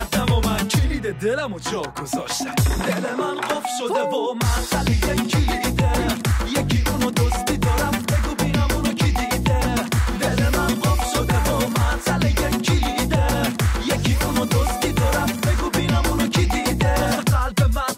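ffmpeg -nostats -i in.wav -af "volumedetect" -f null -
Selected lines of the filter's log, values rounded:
mean_volume: -19.8 dB
max_volume: -6.9 dB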